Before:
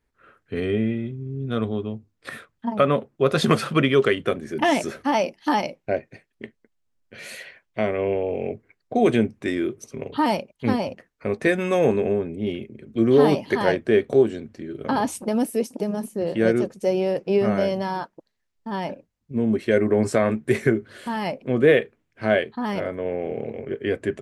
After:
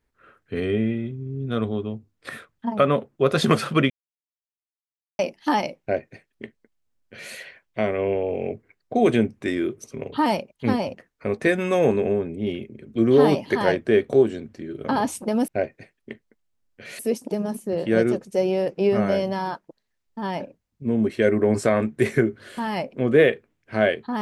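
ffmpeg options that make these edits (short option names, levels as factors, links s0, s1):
-filter_complex "[0:a]asplit=5[s0][s1][s2][s3][s4];[s0]atrim=end=3.9,asetpts=PTS-STARTPTS,afade=t=out:st=3.896:d=0.004:c=hsin[s5];[s1]atrim=start=3.9:end=5.19,asetpts=PTS-STARTPTS,volume=0[s6];[s2]atrim=start=5.19:end=15.482,asetpts=PTS-STARTPTS,afade=t=in:d=0.004:c=hsin[s7];[s3]atrim=start=5.808:end=7.322[s8];[s4]atrim=start=15.478[s9];[s5][s6][s7]concat=n=3:v=0:a=1[s10];[s10][s8]acrossfade=d=0.004:c1=hsin:c2=hsin[s11];[s11][s9]acrossfade=d=0.004:c1=hsin:c2=hsin"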